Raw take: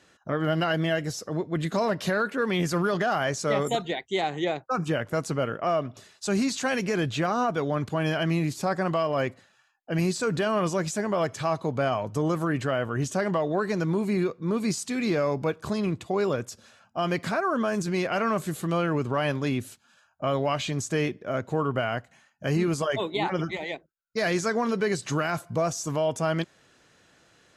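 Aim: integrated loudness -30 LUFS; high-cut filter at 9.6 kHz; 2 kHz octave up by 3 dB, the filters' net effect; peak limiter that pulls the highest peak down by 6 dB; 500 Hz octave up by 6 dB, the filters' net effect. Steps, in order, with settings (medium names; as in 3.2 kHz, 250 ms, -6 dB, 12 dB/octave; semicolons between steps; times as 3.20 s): low-pass 9.6 kHz; peaking EQ 500 Hz +7.5 dB; peaking EQ 2 kHz +3.5 dB; trim -5 dB; peak limiter -19.5 dBFS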